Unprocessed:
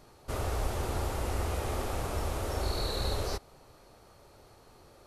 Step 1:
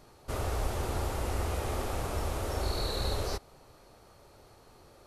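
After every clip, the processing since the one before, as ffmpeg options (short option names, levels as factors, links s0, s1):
-af anull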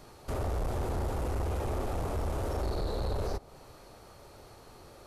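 -filter_complex "[0:a]acrossover=split=1000[s0][s1];[s1]acompressor=threshold=0.00316:ratio=5[s2];[s0][s2]amix=inputs=2:normalize=0,asoftclip=type=tanh:threshold=0.0266,volume=1.68"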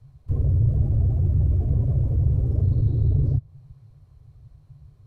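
-af "bass=f=250:g=13,treble=f=4000:g=-3,afftdn=nr=18:nf=-29,afreqshift=-150"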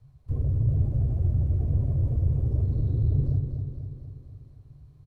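-af "aecho=1:1:244|488|732|976|1220|1464|1708|1952:0.473|0.274|0.159|0.0923|0.0535|0.0311|0.018|0.0104,volume=0.596"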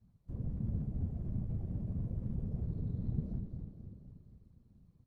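-af "afftfilt=real='hypot(re,im)*cos(2*PI*random(0))':imag='hypot(re,im)*sin(2*PI*random(1))':win_size=512:overlap=0.75,volume=0.473"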